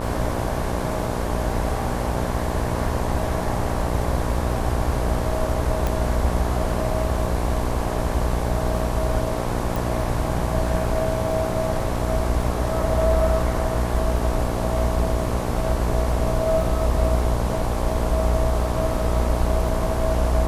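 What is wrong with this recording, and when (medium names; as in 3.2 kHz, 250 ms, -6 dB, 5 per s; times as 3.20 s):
buzz 60 Hz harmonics 19 -27 dBFS
crackle 12 per s -31 dBFS
5.87 s: pop
9.76 s: pop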